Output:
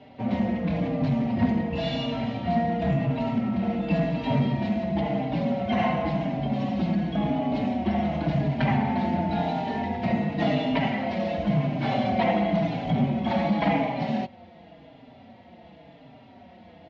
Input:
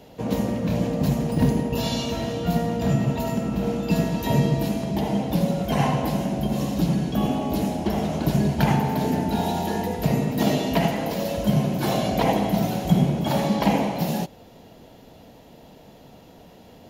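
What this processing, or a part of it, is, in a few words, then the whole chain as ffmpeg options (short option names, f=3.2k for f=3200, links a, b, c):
barber-pole flanger into a guitar amplifier: -filter_complex "[0:a]asplit=2[a][b];[b]adelay=4.6,afreqshift=-0.93[c];[a][c]amix=inputs=2:normalize=1,asoftclip=type=tanh:threshold=-16.5dB,highpass=76,equalizer=f=79:t=q:w=4:g=5,equalizer=f=240:t=q:w=4:g=5,equalizer=f=420:t=q:w=4:g=-6,equalizer=f=700:t=q:w=4:g=6,equalizer=f=2.1k:t=q:w=4:g=8,lowpass=f=3.9k:w=0.5412,lowpass=f=3.9k:w=1.3066"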